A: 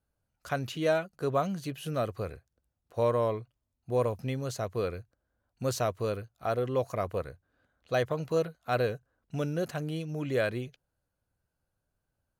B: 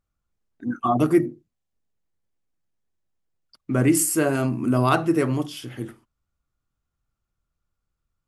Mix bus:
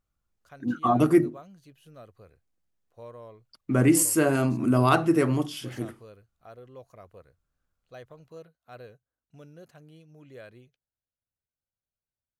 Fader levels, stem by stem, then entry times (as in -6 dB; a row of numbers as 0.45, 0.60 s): -17.5, -1.0 dB; 0.00, 0.00 s